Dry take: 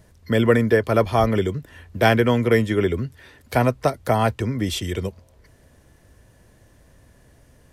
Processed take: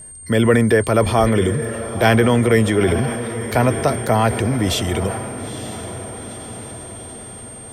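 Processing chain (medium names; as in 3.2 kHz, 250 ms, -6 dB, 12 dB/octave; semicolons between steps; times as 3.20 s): in parallel at -3 dB: peak limiter -14 dBFS, peak gain reduction 10.5 dB; on the sum: echo that smears into a reverb 910 ms, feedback 59%, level -12 dB; whistle 8.7 kHz -36 dBFS; transient shaper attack -1 dB, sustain +5 dB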